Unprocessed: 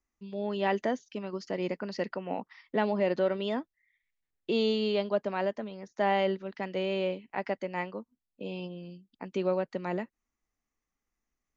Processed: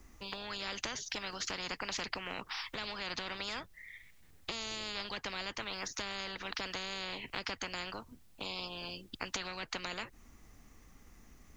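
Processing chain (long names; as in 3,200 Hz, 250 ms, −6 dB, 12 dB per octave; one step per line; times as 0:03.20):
low-shelf EQ 240 Hz +11.5 dB
downward compressor 2.5 to 1, threshold −34 dBFS, peak gain reduction 10 dB
every bin compressed towards the loudest bin 10 to 1
level +5.5 dB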